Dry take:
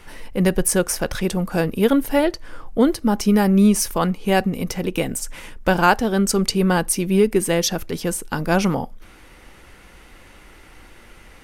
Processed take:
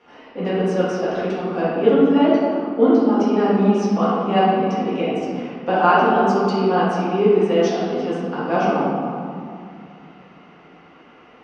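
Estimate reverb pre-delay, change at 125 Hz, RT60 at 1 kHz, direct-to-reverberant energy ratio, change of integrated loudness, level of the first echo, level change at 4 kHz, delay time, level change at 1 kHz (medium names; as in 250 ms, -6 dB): 4 ms, -3.5 dB, 2.4 s, -11.0 dB, +1.0 dB, no echo, -5.0 dB, no echo, +5.0 dB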